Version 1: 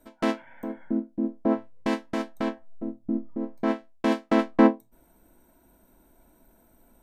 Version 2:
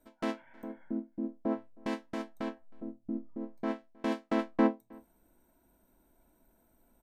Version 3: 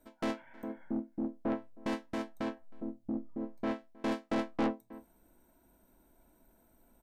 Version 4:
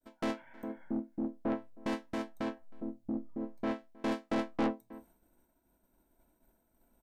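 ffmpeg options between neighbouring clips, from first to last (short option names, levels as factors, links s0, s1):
-filter_complex "[0:a]asplit=2[s0][s1];[s1]adelay=314.9,volume=0.0501,highshelf=f=4000:g=-7.08[s2];[s0][s2]amix=inputs=2:normalize=0,volume=0.376"
-af "aeval=exprs='(tanh(28.2*val(0)+0.2)-tanh(0.2))/28.2':c=same,volume=1.33"
-af "agate=range=0.0224:threshold=0.00112:ratio=3:detection=peak"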